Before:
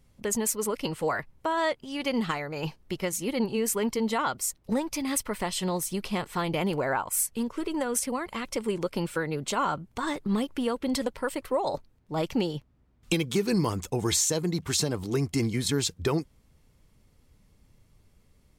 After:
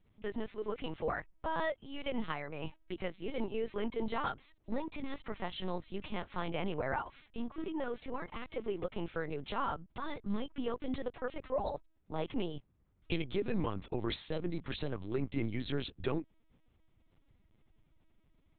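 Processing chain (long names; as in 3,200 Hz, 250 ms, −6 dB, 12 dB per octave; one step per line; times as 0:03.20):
linear-prediction vocoder at 8 kHz pitch kept
level −7.5 dB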